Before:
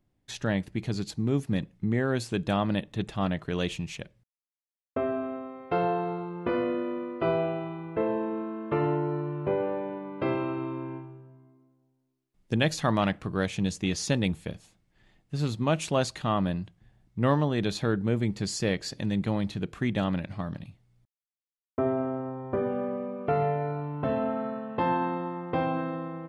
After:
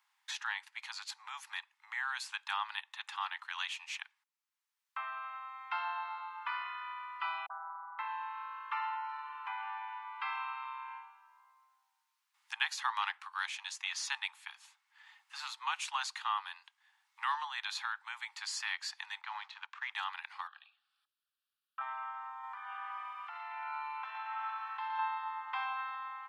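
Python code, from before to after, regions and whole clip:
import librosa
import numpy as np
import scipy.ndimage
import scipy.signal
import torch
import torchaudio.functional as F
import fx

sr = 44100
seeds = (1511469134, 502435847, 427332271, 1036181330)

y = fx.chain(x, sr, fx.steep_lowpass(hz=1600.0, slope=96),
    fx.dispersion(late='highs', ms=43.0, hz=470.0), at=(7.46, 7.99))
y = fx.chain(y, sr, fx.law_mismatch(coded='A'),
    fx.air_absorb(metres=160.0), at=(19.21, 19.92))
y = fx.chain(y, sr, fx.env_lowpass_down(base_hz=2800.0, full_db=-38.0),
    fx.fixed_phaser(hz=1400.0, stages=8), at=(20.47, 21.81))
y = fx.chain(y, sr, fx.over_compress(threshold_db=-32.0, ratio=-1.0),
    fx.echo_wet_highpass(ms=115, feedback_pct=76, hz=1800.0, wet_db=-5), at=(22.43, 24.99))
y = scipy.signal.sosfilt(scipy.signal.butter(16, 840.0, 'highpass', fs=sr, output='sos'), y)
y = fx.high_shelf(y, sr, hz=6600.0, db=-7.0)
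y = fx.band_squash(y, sr, depth_pct=40)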